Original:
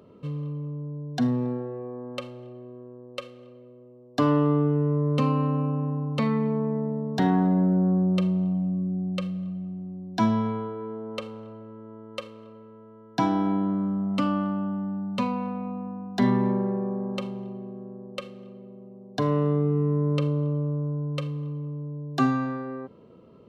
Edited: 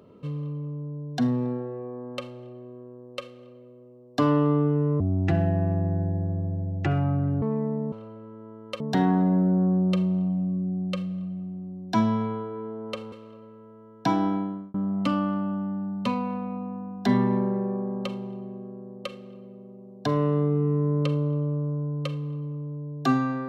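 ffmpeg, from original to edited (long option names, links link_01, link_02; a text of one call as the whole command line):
ffmpeg -i in.wav -filter_complex "[0:a]asplit=7[link_01][link_02][link_03][link_04][link_05][link_06][link_07];[link_01]atrim=end=5.004[link_08];[link_02]atrim=start=5:end=6.55,asetpts=PTS-STARTPTS,asetrate=28224,aresample=44100[link_09];[link_03]atrim=start=6.546:end=7.052[link_10];[link_04]atrim=start=11.368:end=12.252[link_11];[link_05]atrim=start=7.048:end=11.372[link_12];[link_06]atrim=start=12.248:end=13.87,asetpts=PTS-STARTPTS,afade=type=out:start_time=1.132:duration=0.49[link_13];[link_07]atrim=start=13.87,asetpts=PTS-STARTPTS,afade=type=in:duration=0.004:curve=hsin[link_14];[link_08][link_09]acrossfade=duration=0.004:curve1=hsin:curve2=hsin[link_15];[link_15][link_10]acrossfade=duration=0.004:curve1=hsin:curve2=hsin[link_16];[link_16][link_11]acrossfade=duration=0.004:curve1=hsin:curve2=hsin[link_17];[link_17][link_12]acrossfade=duration=0.004:curve1=hsin:curve2=hsin[link_18];[link_13][link_14]concat=n=2:v=0:a=1[link_19];[link_18][link_19]acrossfade=duration=0.004:curve1=hsin:curve2=hsin" out.wav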